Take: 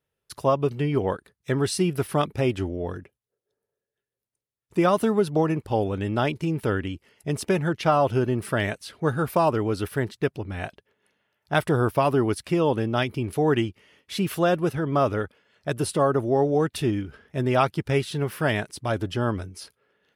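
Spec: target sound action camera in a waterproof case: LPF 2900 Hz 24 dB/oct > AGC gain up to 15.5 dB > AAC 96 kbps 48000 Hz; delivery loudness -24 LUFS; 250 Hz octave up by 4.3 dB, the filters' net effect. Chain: LPF 2900 Hz 24 dB/oct; bell 250 Hz +6 dB; AGC gain up to 15.5 dB; gain -4 dB; AAC 96 kbps 48000 Hz

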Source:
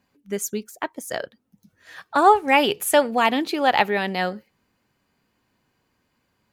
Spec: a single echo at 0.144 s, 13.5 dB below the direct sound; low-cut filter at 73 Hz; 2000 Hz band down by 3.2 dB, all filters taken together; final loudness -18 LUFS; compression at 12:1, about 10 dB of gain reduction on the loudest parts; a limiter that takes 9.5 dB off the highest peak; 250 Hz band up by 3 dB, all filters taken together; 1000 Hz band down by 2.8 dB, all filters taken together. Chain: HPF 73 Hz; bell 250 Hz +4 dB; bell 1000 Hz -3.5 dB; bell 2000 Hz -3 dB; compressor 12:1, threshold -21 dBFS; limiter -20 dBFS; echo 0.144 s -13.5 dB; gain +12.5 dB

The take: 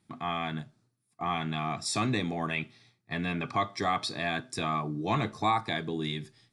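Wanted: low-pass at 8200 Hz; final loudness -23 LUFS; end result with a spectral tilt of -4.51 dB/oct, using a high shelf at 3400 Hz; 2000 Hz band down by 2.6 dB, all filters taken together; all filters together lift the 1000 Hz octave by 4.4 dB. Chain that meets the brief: LPF 8200 Hz; bell 1000 Hz +7 dB; bell 2000 Hz -7 dB; high shelf 3400 Hz +5.5 dB; gain +6 dB

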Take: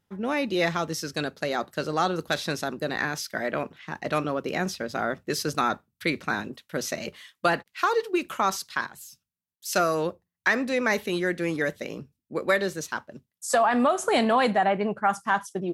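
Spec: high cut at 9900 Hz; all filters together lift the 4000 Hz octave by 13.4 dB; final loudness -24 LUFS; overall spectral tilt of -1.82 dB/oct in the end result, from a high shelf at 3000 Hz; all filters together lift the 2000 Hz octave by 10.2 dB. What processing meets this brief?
LPF 9900 Hz; bell 2000 Hz +8.5 dB; high shelf 3000 Hz +7 dB; bell 4000 Hz +8.5 dB; gain -4 dB

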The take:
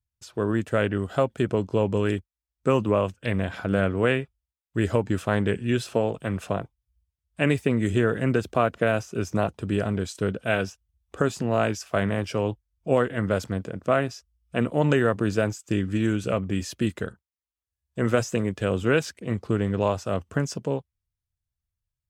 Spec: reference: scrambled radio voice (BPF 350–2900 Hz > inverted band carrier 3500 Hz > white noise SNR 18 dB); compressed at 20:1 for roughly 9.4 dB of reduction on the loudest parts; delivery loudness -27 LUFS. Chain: compressor 20:1, threshold -25 dBFS; BPF 350–2900 Hz; inverted band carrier 3500 Hz; white noise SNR 18 dB; gain +6 dB

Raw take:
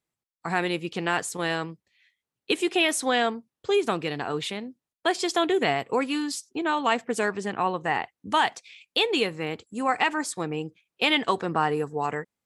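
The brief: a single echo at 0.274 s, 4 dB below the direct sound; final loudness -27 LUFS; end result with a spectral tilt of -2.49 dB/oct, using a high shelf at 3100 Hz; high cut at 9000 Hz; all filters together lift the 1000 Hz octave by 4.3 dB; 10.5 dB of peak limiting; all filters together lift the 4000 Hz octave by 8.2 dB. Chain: LPF 9000 Hz; bell 1000 Hz +4.5 dB; high shelf 3100 Hz +6 dB; bell 4000 Hz +6.5 dB; limiter -12 dBFS; echo 0.274 s -4 dB; gain -3 dB

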